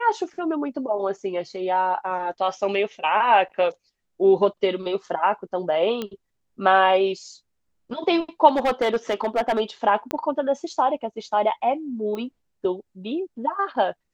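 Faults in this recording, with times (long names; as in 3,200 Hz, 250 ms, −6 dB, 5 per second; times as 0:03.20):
0:06.02: click −15 dBFS
0:08.48–0:09.61: clipping −16 dBFS
0:10.11: click −11 dBFS
0:12.15: click −20 dBFS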